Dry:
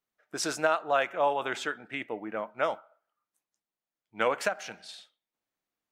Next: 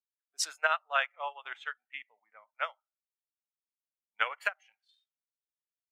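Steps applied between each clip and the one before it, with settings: spectral noise reduction 15 dB; HPF 1300 Hz 12 dB/oct; upward expander 2.5:1, over -45 dBFS; gain +6 dB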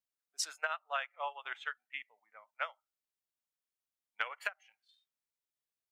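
compressor 6:1, threshold -32 dBFS, peak gain reduction 10.5 dB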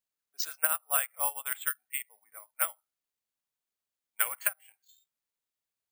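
careless resampling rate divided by 4×, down filtered, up zero stuff; gain +2 dB

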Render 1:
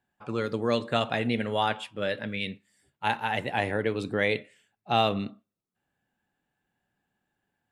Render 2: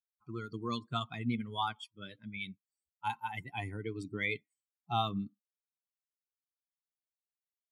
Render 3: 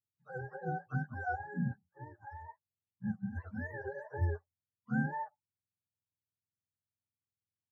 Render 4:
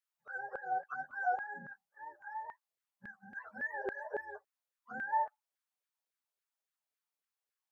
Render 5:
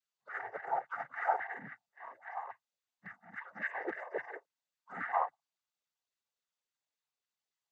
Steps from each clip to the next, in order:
per-bin expansion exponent 2; comb 0.9 ms, depth 92%; gain -6.5 dB
spectrum mirrored in octaves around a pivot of 420 Hz
limiter -31 dBFS, peak gain reduction 10.5 dB; LFO high-pass saw down 3.6 Hz 450–1700 Hz; gain +1.5 dB
noise vocoder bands 16; gain +1 dB

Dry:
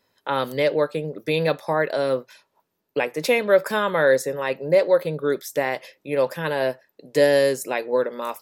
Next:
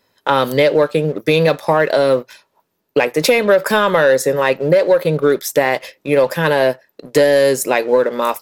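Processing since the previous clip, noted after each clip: sample leveller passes 1; compressor, threshold -17 dBFS, peak gain reduction 7.5 dB; gain +8 dB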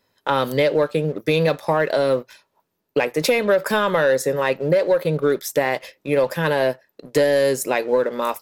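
low shelf 140 Hz +4 dB; gain -5.5 dB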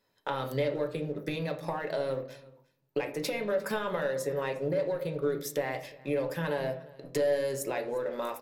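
compressor 4:1, threshold -23 dBFS, peak gain reduction 8.5 dB; echo 0.353 s -22.5 dB; on a send at -4.5 dB: reverb RT60 0.55 s, pre-delay 5 ms; on the sum: gain -8 dB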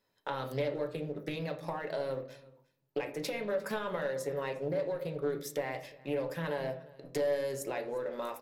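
Doppler distortion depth 0.14 ms; gain -3.5 dB

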